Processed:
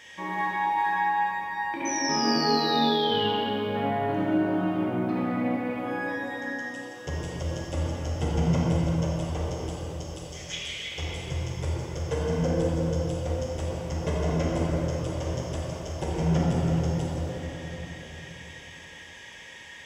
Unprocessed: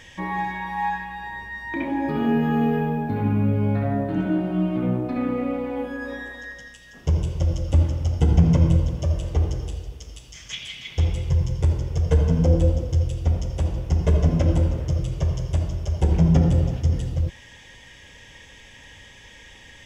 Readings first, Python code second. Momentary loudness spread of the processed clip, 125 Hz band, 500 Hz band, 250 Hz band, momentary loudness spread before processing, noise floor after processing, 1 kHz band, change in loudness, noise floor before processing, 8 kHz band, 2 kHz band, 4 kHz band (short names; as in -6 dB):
14 LU, -8.5 dB, 0.0 dB, -4.0 dB, 14 LU, -45 dBFS, +3.0 dB, -5.0 dB, -47 dBFS, n/a, +1.5 dB, +8.0 dB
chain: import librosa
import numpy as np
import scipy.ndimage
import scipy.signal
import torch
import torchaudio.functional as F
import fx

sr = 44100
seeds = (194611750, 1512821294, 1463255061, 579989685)

y = fx.highpass(x, sr, hz=480.0, slope=6)
y = fx.spec_paint(y, sr, seeds[0], shape='fall', start_s=1.85, length_s=1.44, low_hz=2800.0, high_hz=6100.0, level_db=-32.0)
y = fx.rev_plate(y, sr, seeds[1], rt60_s=4.6, hf_ratio=0.45, predelay_ms=0, drr_db=-4.5)
y = y * 10.0 ** (-3.0 / 20.0)